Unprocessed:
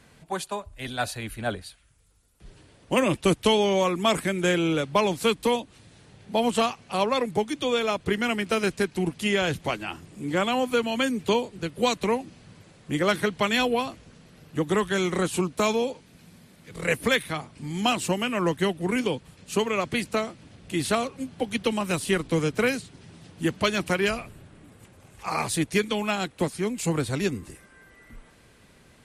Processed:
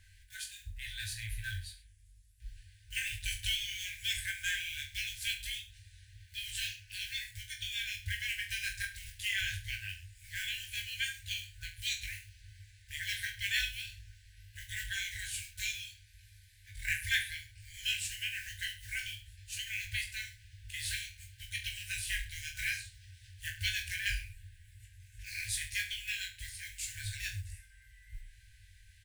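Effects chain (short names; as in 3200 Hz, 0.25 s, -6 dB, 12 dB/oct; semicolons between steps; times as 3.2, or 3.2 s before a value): block floating point 5-bit; FFT band-reject 110–1500 Hz; low shelf 110 Hz +11 dB; reverse bouncing-ball echo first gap 20 ms, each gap 1.15×, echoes 5; gain -7.5 dB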